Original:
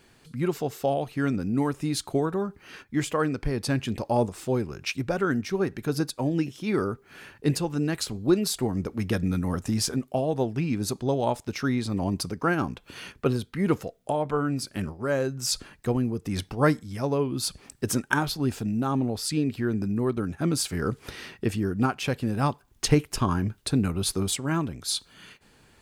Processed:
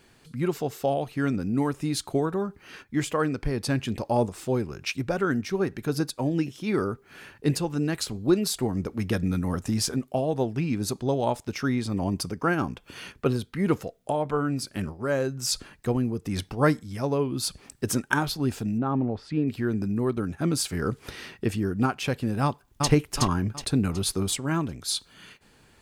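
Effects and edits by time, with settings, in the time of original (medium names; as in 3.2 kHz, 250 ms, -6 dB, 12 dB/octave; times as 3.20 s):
11.54–13.00 s: band-stop 4 kHz
18.78–19.48 s: low-pass 1.9 kHz
22.43–22.90 s: echo throw 370 ms, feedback 40%, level -2.5 dB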